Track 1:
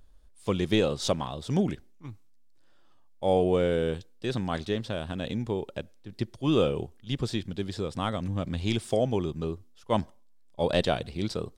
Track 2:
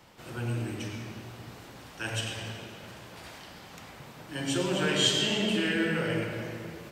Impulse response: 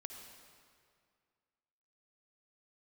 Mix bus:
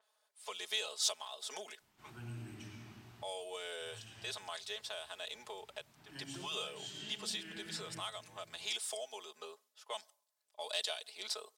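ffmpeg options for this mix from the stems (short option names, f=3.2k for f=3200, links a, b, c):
-filter_complex "[0:a]highpass=f=600:w=0.5412,highpass=f=600:w=1.3066,aecho=1:1:4.7:0.99,adynamicequalizer=threshold=0.00355:dfrequency=5800:dqfactor=0.7:tfrequency=5800:tqfactor=0.7:attack=5:release=100:ratio=0.375:range=2.5:mode=boostabove:tftype=highshelf,volume=-3.5dB,asplit=2[a][b];[1:a]equalizer=f=510:w=4:g=-14.5,adelay=1800,volume=-12.5dB[c];[b]apad=whole_len=384283[d];[c][d]sidechaincompress=threshold=-42dB:ratio=3:attack=33:release=948[e];[a][e]amix=inputs=2:normalize=0,acrossover=split=130|3000[f][g][h];[g]acompressor=threshold=-47dB:ratio=3[i];[f][i][h]amix=inputs=3:normalize=0"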